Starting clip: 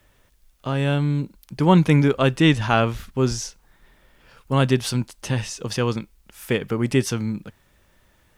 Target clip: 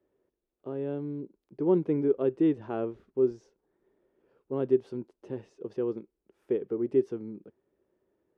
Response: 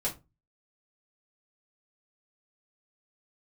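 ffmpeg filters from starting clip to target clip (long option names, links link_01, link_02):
-af "bandpass=frequency=380:width_type=q:width=4.4:csg=0"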